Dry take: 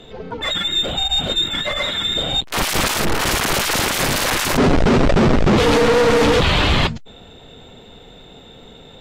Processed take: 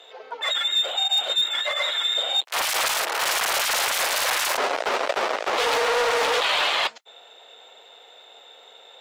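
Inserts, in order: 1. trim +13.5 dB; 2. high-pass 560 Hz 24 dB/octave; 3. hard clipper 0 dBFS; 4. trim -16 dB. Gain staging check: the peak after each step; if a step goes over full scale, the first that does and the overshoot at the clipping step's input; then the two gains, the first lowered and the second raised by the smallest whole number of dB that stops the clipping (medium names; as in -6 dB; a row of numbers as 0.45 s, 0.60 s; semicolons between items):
+2.5 dBFS, +8.0 dBFS, 0.0 dBFS, -16.0 dBFS; step 1, 8.0 dB; step 1 +5.5 dB, step 4 -8 dB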